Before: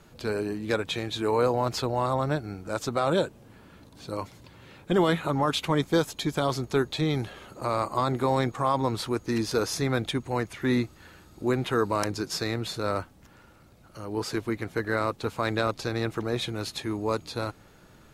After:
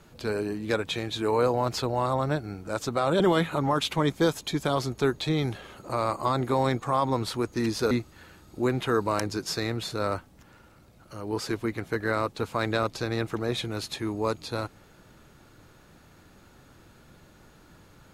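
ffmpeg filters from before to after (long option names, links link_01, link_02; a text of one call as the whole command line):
ffmpeg -i in.wav -filter_complex "[0:a]asplit=3[link_01][link_02][link_03];[link_01]atrim=end=3.202[link_04];[link_02]atrim=start=4.918:end=9.632[link_05];[link_03]atrim=start=10.748[link_06];[link_04][link_05]acrossfade=duration=0.004:curve1=hsin:curve2=hsin[link_07];[link_07][link_06]acrossfade=duration=0.004:curve1=hsin:curve2=hsin" out.wav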